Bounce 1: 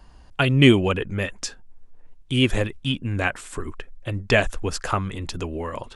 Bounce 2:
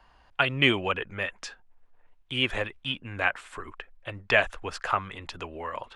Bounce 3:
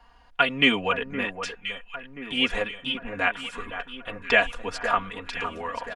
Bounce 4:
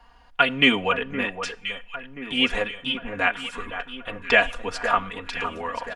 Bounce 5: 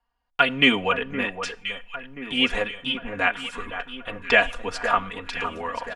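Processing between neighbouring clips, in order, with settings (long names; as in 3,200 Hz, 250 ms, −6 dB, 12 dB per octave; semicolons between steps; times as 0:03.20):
three-way crossover with the lows and the highs turned down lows −14 dB, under 590 Hz, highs −15 dB, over 3,700 Hz
comb filter 4.2 ms, depth 85%; on a send: delay that swaps between a low-pass and a high-pass 515 ms, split 1,700 Hz, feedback 69%, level −9 dB
convolution reverb, pre-delay 3 ms, DRR 19.5 dB; level +2 dB
noise gate −43 dBFS, range −24 dB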